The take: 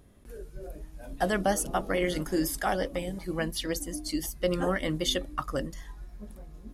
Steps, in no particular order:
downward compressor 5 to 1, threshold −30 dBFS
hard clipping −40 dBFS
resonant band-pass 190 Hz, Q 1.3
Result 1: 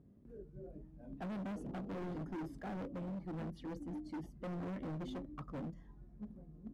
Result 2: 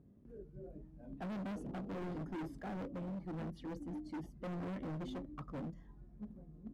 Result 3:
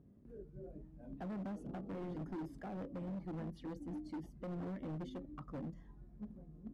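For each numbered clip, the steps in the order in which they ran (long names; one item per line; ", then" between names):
resonant band-pass, then downward compressor, then hard clipping
resonant band-pass, then hard clipping, then downward compressor
downward compressor, then resonant band-pass, then hard clipping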